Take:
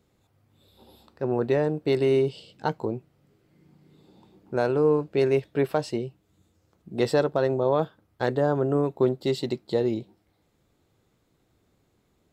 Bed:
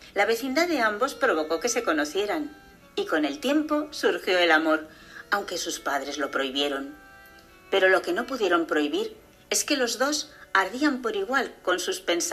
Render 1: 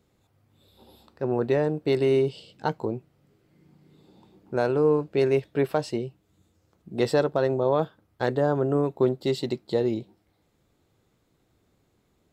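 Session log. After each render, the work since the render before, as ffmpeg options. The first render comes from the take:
-af anull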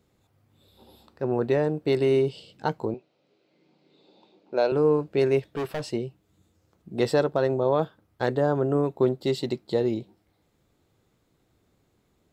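-filter_complex "[0:a]asettb=1/sr,asplit=3[a][b][c];[a]atrim=end=2.944[d];[b]atrim=start=2.94:end=4.72,asetpts=PTS-STARTPTS,afade=t=in:d=0.004:c=qsin,afade=t=out:st=1.776:d=0.004:c=qsin,highpass=330,equalizer=f=580:t=q:w=4:g=5,equalizer=f=1.2k:t=q:w=4:g=-4,equalizer=f=1.8k:t=q:w=4:g=-6,equalizer=f=2.5k:t=q:w=4:g=5,equalizer=f=4k:t=q:w=4:g=7,lowpass=f=5.9k:w=0.5412,lowpass=f=5.9k:w=1.3066[e];[c]atrim=start=4.716[f];[d][e]acrossfade=d=0.004:c1=hsin:c2=qsin[g];[g][f]acrossfade=d=0.004:c1=qsin:c2=hsin,asettb=1/sr,asplit=3[h][i][j];[h]atrim=end=5.434[k];[i]atrim=start=5.43:end=5.9,asetpts=PTS-STARTPTS,afade=t=in:d=0.004:c=qsin,afade=t=out:st=0.466:d=0.004:c=qsin,asoftclip=type=hard:threshold=-26dB[l];[j]atrim=start=5.896[m];[k][l]acrossfade=d=0.004:c1=hsin:c2=qsin[n];[n][m]acrossfade=d=0.004:c1=qsin:c2=hsin"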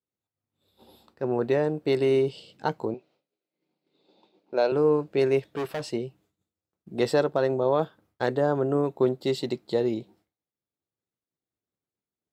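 -af "highpass=f=140:p=1,agate=range=-33dB:threshold=-54dB:ratio=3:detection=peak"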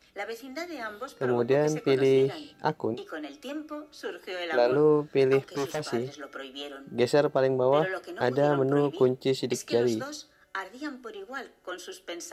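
-filter_complex "[1:a]volume=-13dB[a];[0:a][a]amix=inputs=2:normalize=0"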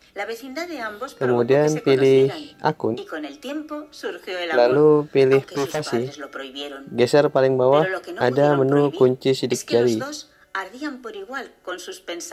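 -af "volume=7dB"

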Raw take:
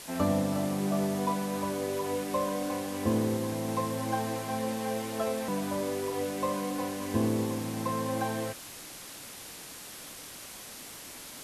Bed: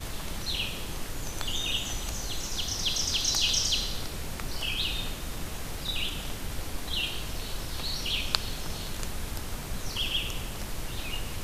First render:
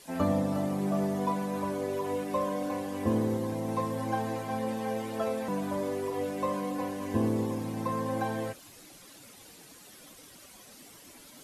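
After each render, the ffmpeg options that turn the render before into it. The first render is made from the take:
-af "afftdn=nr=11:nf=-45"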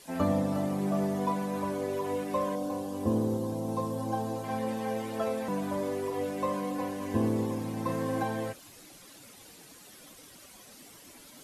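-filter_complex "[0:a]asettb=1/sr,asplit=3[a][b][c];[a]atrim=end=2.554[d];[b]atrim=start=2.55:end=4.44,asetpts=PTS-STARTPTS,afade=t=in:d=0.004:c=qsin,afade=t=out:st=1.886:d=0.004:c=qsin,equalizer=f=2k:w=1.6:g=-13.5[e];[c]atrim=start=4.436[f];[d][e]acrossfade=d=0.004:c1=hsin:c2=qsin[g];[g][f]acrossfade=d=0.004:c1=qsin:c2=hsin,asettb=1/sr,asplit=3[h][i][j];[h]atrim=end=7.834[k];[i]atrim=start=7.83:end=8.23,asetpts=PTS-STARTPTS,afade=t=in:d=0.004:c=qsin,afade=t=out:st=0.396:d=0.004:c=qsin,asplit=2[l][m];[m]adelay=30,volume=-4dB[n];[l][n]amix=inputs=2:normalize=0,atrim=end_sample=17640[o];[j]atrim=start=8.226[p];[k][o]acrossfade=d=0.004:c1=hsin:c2=qsin[q];[q][p]acrossfade=d=0.004:c1=qsin:c2=hsin"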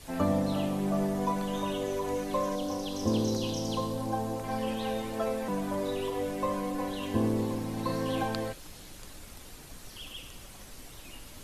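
-filter_complex "[1:a]volume=-14.5dB[a];[0:a][a]amix=inputs=2:normalize=0"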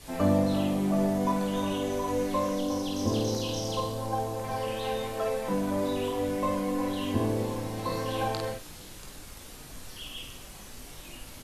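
-filter_complex "[0:a]asplit=2[a][b];[b]adelay=44,volume=-12dB[c];[a][c]amix=inputs=2:normalize=0,aecho=1:1:20|52:0.531|0.631"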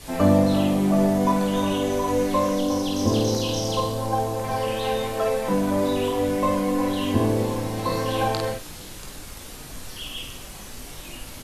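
-af "volume=6.5dB"

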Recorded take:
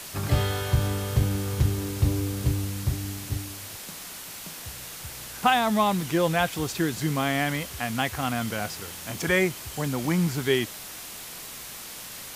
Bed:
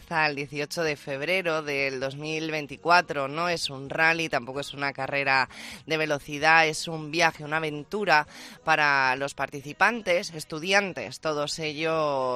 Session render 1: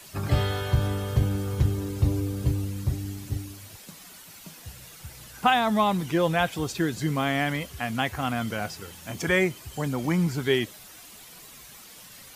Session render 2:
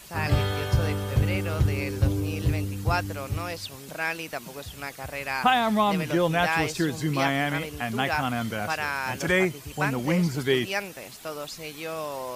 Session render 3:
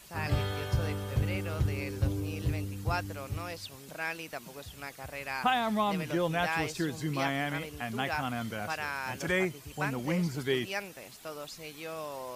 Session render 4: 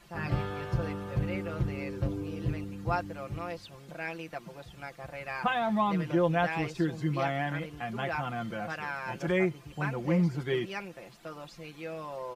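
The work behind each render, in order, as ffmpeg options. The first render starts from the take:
-af "afftdn=nr=10:nf=-40"
-filter_complex "[1:a]volume=-7.5dB[a];[0:a][a]amix=inputs=2:normalize=0"
-af "volume=-6.5dB"
-af "lowpass=f=1.7k:p=1,aecho=1:1:5.8:0.7"

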